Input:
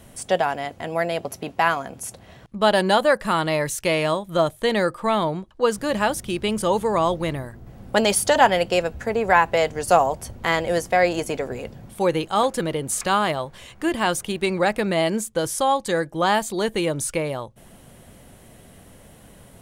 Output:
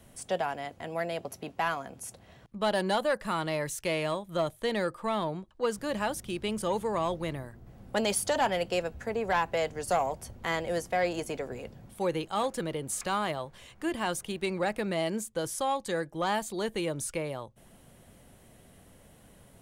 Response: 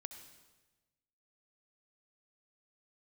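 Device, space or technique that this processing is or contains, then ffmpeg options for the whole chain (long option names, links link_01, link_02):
one-band saturation: -filter_complex "[0:a]acrossover=split=350|3800[link_01][link_02][link_03];[link_02]asoftclip=type=tanh:threshold=-11.5dB[link_04];[link_01][link_04][link_03]amix=inputs=3:normalize=0,volume=-8.5dB"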